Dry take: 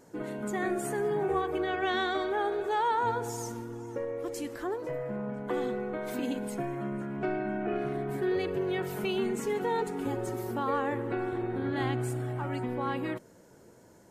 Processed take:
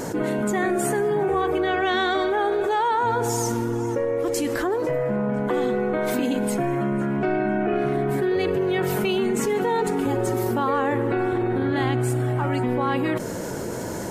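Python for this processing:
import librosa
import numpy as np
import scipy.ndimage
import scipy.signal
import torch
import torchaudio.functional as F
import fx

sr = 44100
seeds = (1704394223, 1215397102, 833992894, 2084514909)

y = fx.env_flatten(x, sr, amount_pct=70)
y = y * 10.0 ** (5.0 / 20.0)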